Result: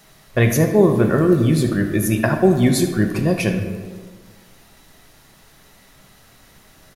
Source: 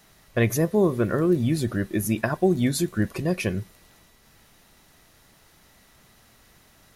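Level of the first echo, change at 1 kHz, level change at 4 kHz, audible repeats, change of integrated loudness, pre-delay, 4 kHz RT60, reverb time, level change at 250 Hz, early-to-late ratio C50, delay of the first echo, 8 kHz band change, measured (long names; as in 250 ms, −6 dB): −14.5 dB, +6.5 dB, +6.0 dB, 1, +6.5 dB, 5 ms, 0.85 s, 1.5 s, +6.5 dB, 6.5 dB, 76 ms, +5.5 dB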